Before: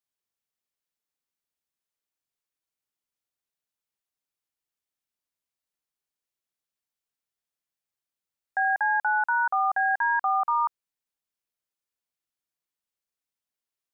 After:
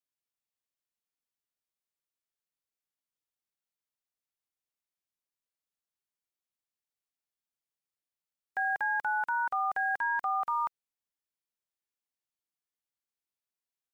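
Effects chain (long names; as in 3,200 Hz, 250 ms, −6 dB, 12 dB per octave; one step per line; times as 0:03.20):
spectral envelope flattened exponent 0.6
level −6 dB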